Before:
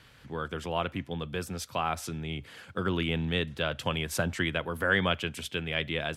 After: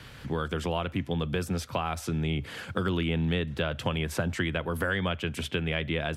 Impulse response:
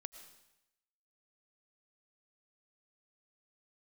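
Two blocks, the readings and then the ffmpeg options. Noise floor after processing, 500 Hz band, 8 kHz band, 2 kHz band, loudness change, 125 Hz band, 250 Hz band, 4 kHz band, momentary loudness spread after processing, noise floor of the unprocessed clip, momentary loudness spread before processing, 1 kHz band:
−47 dBFS, +1.0 dB, −2.0 dB, −1.5 dB, +1.0 dB, +4.5 dB, +3.0 dB, −1.5 dB, 4 LU, −56 dBFS, 10 LU, −1.0 dB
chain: -filter_complex "[0:a]acrossover=split=80|2800[link_01][link_02][link_03];[link_01]acompressor=threshold=-53dB:ratio=4[link_04];[link_02]acompressor=threshold=-38dB:ratio=4[link_05];[link_03]acompressor=threshold=-50dB:ratio=4[link_06];[link_04][link_05][link_06]amix=inputs=3:normalize=0,lowshelf=frequency=460:gain=4,volume=8dB"

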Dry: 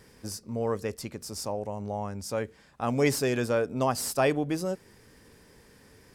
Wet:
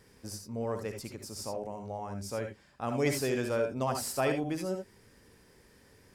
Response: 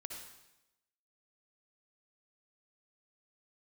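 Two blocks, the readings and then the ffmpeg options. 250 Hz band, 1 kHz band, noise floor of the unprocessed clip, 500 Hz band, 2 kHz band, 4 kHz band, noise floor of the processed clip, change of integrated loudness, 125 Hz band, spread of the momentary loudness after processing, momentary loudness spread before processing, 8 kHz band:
−4.5 dB, −4.5 dB, −58 dBFS, −4.0 dB, −4.0 dB, −4.0 dB, −61 dBFS, −4.0 dB, −4.0 dB, 12 LU, 12 LU, −4.0 dB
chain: -filter_complex "[1:a]atrim=start_sample=2205,atrim=end_sample=3969[link_01];[0:a][link_01]afir=irnorm=-1:irlink=0"

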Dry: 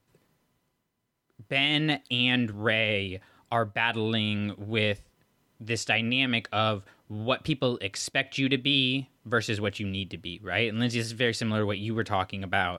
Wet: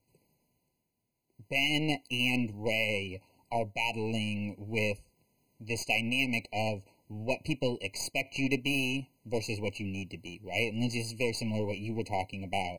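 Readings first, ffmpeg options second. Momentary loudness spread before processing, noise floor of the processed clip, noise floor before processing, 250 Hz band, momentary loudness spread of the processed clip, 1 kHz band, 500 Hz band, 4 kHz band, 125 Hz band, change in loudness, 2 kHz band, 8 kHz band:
9 LU, −79 dBFS, −75 dBFS, −4.5 dB, 9 LU, −6.0 dB, −4.0 dB, −7.5 dB, −5.0 dB, −5.0 dB, −5.0 dB, −1.5 dB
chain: -af "crystalizer=i=1:c=0,aeval=exprs='0.376*(cos(1*acos(clip(val(0)/0.376,-1,1)))-cos(1*PI/2))+0.00211*(cos(3*acos(clip(val(0)/0.376,-1,1)))-cos(3*PI/2))+0.0075*(cos(4*acos(clip(val(0)/0.376,-1,1)))-cos(4*PI/2))+0.00531*(cos(7*acos(clip(val(0)/0.376,-1,1)))-cos(7*PI/2))+0.0237*(cos(8*acos(clip(val(0)/0.376,-1,1)))-cos(8*PI/2))':channel_layout=same,afftfilt=real='re*eq(mod(floor(b*sr/1024/1000),2),0)':imag='im*eq(mod(floor(b*sr/1024/1000),2),0)':win_size=1024:overlap=0.75,volume=-3dB"

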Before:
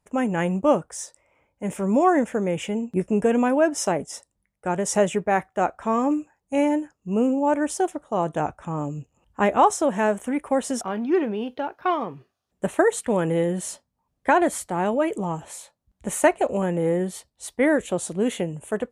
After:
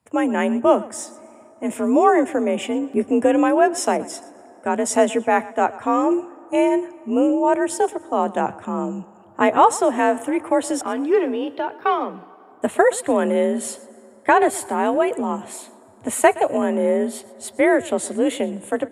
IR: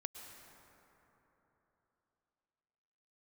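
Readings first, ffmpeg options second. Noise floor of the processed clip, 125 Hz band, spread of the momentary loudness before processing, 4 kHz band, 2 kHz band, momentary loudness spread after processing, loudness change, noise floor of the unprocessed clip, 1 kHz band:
−48 dBFS, can't be measured, 13 LU, +3.5 dB, +3.5 dB, 13 LU, +3.5 dB, −78 dBFS, +4.5 dB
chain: -filter_complex "[0:a]afreqshift=47,bandreject=frequency=6100:width=7.1,asplit=2[link_01][link_02];[1:a]atrim=start_sample=2205,adelay=120[link_03];[link_02][link_03]afir=irnorm=-1:irlink=0,volume=-15.5dB[link_04];[link_01][link_04]amix=inputs=2:normalize=0,volume=3.5dB"

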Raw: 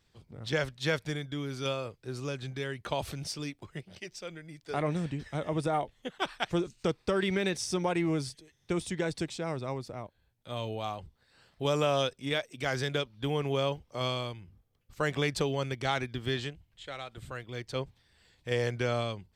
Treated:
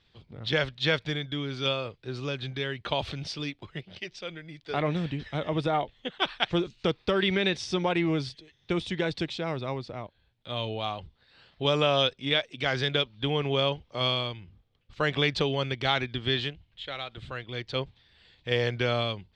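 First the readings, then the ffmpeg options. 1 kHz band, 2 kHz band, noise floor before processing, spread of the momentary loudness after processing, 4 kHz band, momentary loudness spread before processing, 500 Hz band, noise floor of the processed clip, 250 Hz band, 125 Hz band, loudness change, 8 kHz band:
+3.0 dB, +5.0 dB, −71 dBFS, 13 LU, +8.5 dB, 13 LU, +2.5 dB, −68 dBFS, +2.5 dB, +2.5 dB, +4.0 dB, −6.0 dB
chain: -af "lowpass=frequency=3600:width_type=q:width=2.1,volume=2.5dB"

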